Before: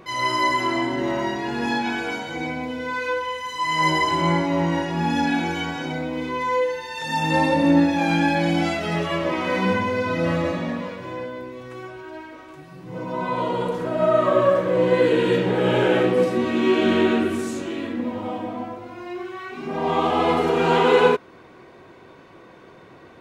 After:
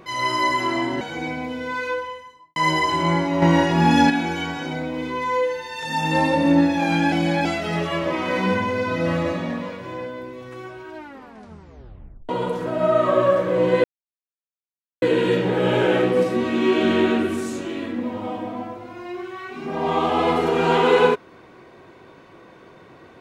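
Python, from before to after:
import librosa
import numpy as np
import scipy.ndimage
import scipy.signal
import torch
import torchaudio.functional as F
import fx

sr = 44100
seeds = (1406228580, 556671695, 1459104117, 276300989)

y = fx.studio_fade_out(x, sr, start_s=2.99, length_s=0.76)
y = fx.edit(y, sr, fx.cut(start_s=1.01, length_s=1.19),
    fx.clip_gain(start_s=4.61, length_s=0.68, db=6.5),
    fx.reverse_span(start_s=8.31, length_s=0.33),
    fx.tape_stop(start_s=12.15, length_s=1.33),
    fx.insert_silence(at_s=15.03, length_s=1.18), tone=tone)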